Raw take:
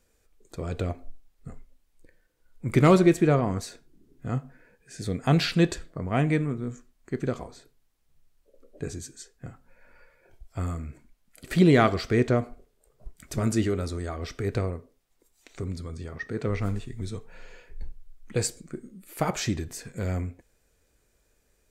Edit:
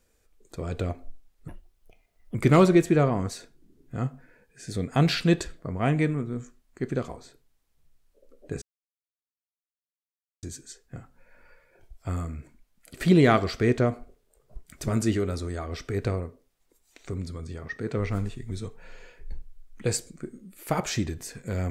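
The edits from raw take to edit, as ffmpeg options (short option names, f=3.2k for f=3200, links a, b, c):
-filter_complex "[0:a]asplit=4[a][b][c][d];[a]atrim=end=1.484[e];[b]atrim=start=1.48:end=2.66,asetpts=PTS-STARTPTS,asetrate=59976,aresample=44100,atrim=end_sample=38263,asetpts=PTS-STARTPTS[f];[c]atrim=start=2.656:end=8.93,asetpts=PTS-STARTPTS,afade=t=out:st=6.27:d=0.004:c=hsin,apad=pad_dur=1.81[g];[d]atrim=start=8.93,asetpts=PTS-STARTPTS,afade=t=in:d=0.004:c=hsin[h];[e][f]acrossfade=d=0.004:c1=hsin:c2=hsin[i];[g][h]concat=n=2:v=0:a=1[j];[i][j]acrossfade=d=0.004:c1=hsin:c2=hsin"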